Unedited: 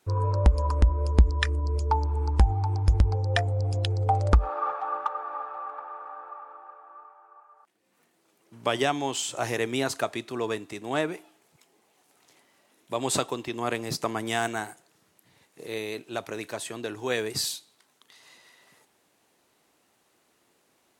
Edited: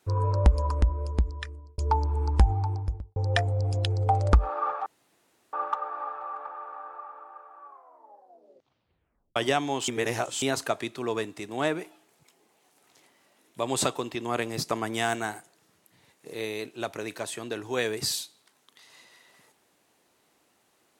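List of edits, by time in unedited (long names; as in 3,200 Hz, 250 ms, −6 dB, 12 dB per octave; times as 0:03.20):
0:00.49–0:01.78: fade out
0:02.50–0:03.16: fade out and dull
0:04.86: splice in room tone 0.67 s
0:06.94: tape stop 1.75 s
0:09.21–0:09.75: reverse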